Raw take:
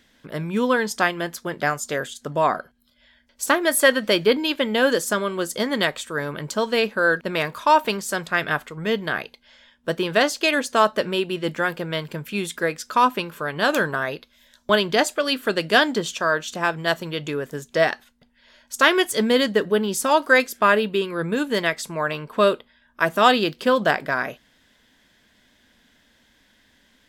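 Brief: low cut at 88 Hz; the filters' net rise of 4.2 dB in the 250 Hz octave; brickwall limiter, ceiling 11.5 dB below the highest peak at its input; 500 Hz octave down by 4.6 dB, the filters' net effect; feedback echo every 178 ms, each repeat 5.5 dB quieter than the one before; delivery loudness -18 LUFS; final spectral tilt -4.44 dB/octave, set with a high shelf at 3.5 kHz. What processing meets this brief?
high-pass 88 Hz; peaking EQ 250 Hz +7.5 dB; peaking EQ 500 Hz -8 dB; treble shelf 3.5 kHz +4 dB; peak limiter -13 dBFS; feedback delay 178 ms, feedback 53%, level -5.5 dB; trim +5 dB

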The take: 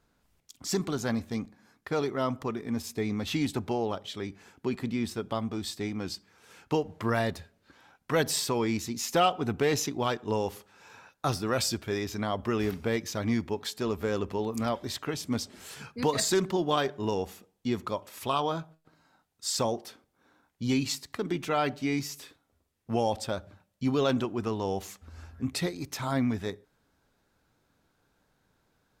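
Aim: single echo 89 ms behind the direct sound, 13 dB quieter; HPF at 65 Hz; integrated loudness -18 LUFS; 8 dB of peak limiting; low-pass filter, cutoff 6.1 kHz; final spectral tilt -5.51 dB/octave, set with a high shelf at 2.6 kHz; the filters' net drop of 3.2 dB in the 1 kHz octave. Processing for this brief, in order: high-pass 65 Hz; low-pass 6.1 kHz; peaking EQ 1 kHz -3.5 dB; treble shelf 2.6 kHz -6 dB; peak limiter -22 dBFS; delay 89 ms -13 dB; trim +16.5 dB

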